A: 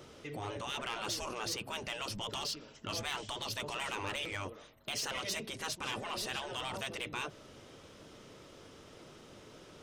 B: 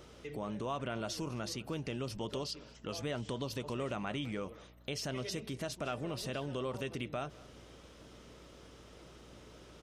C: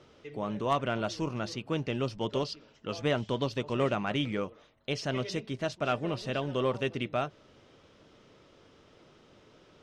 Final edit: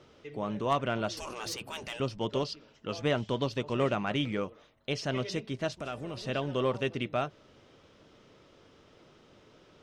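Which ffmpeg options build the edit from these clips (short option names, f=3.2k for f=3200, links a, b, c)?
-filter_complex "[2:a]asplit=3[a][b][c];[a]atrim=end=1.172[d];[0:a]atrim=start=1.168:end=2.002[e];[b]atrim=start=1.998:end=5.772[f];[1:a]atrim=start=5.768:end=6.172[g];[c]atrim=start=6.168[h];[d][e]acrossfade=d=0.004:c1=hsin:c2=hsin[i];[i][f]acrossfade=d=0.004:c1=hsin:c2=hsin[j];[j][g]acrossfade=d=0.004:c1=hsin:c2=hsin[k];[k][h]acrossfade=d=0.004:c1=hsin:c2=hsin"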